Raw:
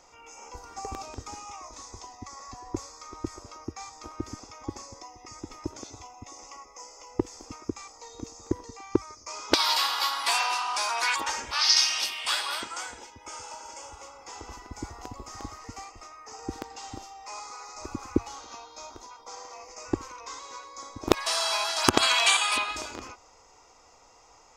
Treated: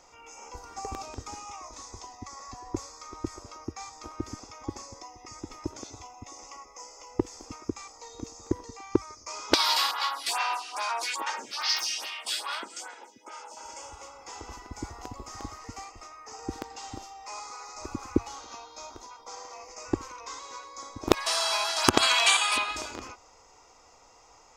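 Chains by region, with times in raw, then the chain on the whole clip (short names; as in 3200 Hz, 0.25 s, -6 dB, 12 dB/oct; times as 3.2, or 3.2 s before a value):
9.91–13.57 HPF 180 Hz 24 dB/oct + hard clip -15.5 dBFS + photocell phaser 2.4 Hz
whole clip: dry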